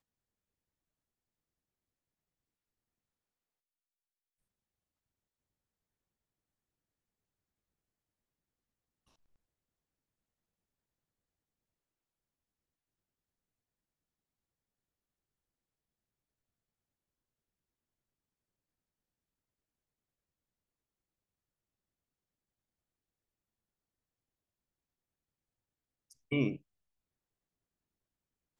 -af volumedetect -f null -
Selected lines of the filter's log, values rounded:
mean_volume: -51.3 dB
max_volume: -17.6 dB